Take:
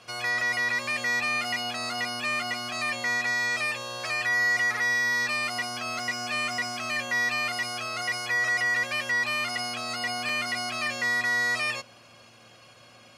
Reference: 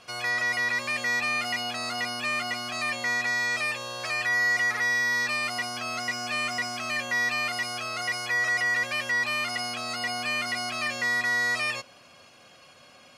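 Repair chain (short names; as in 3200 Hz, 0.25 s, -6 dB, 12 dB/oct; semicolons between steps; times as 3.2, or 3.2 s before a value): de-hum 114.9 Hz, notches 12; interpolate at 0.41/5.99/10.29, 2.2 ms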